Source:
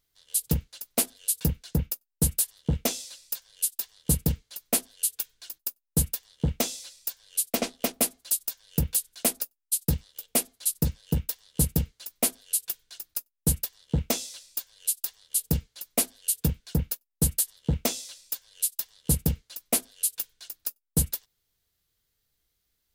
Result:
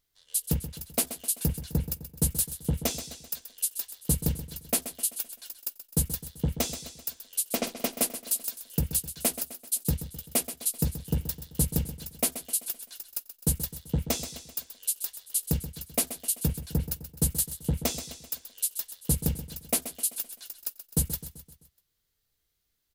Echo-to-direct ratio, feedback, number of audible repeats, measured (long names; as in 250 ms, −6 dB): −10.5 dB, 51%, 4